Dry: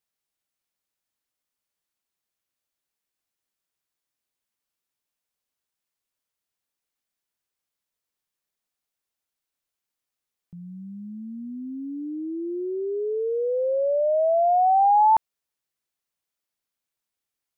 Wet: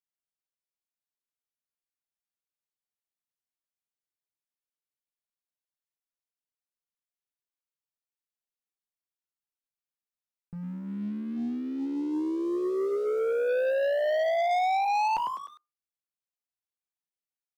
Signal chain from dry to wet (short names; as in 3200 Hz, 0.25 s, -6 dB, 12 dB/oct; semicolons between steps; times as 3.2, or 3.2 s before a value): frequency-shifting echo 0.101 s, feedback 46%, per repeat +81 Hz, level -14 dB; limiter -17 dBFS, peak gain reduction 5.5 dB; on a send at -12.5 dB: reverb RT60 0.30 s, pre-delay 4 ms; on the sum: sample leveller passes 3; gain -9 dB